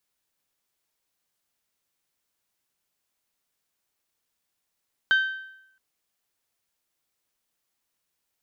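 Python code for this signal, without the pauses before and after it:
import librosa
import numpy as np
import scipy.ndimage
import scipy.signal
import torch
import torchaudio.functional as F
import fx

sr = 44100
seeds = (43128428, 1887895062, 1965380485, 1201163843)

y = fx.strike_metal(sr, length_s=0.67, level_db=-15, body='bell', hz=1550.0, decay_s=0.8, tilt_db=10.0, modes=5)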